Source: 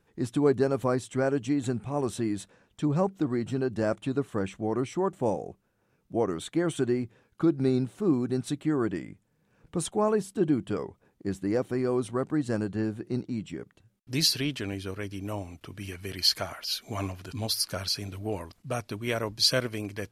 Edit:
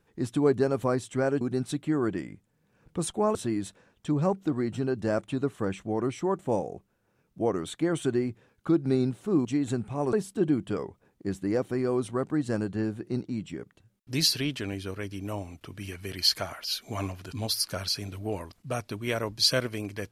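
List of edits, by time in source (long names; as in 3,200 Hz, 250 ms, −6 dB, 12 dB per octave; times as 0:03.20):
0:01.41–0:02.09: swap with 0:08.19–0:10.13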